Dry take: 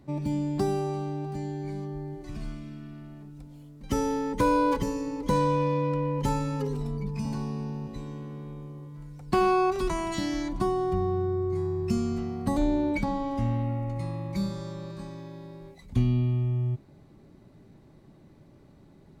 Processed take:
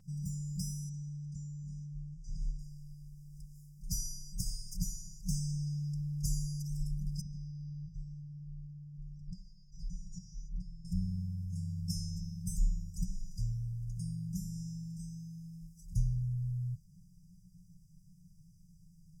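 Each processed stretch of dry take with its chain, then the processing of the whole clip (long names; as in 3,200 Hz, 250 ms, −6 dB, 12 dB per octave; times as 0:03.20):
0:00.89–0:02.59: low-pass filter 6,800 Hz 24 dB per octave + phaser with its sweep stopped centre 1,300 Hz, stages 4
0:07.21–0:10.85: high-frequency loss of the air 220 metres + downward compressor, threshold −31 dBFS
whole clip: brick-wall band-stop 190–4,800 Hz; parametric band 62 Hz −14.5 dB 0.93 octaves; comb filter 3.9 ms, depth 64%; level +2.5 dB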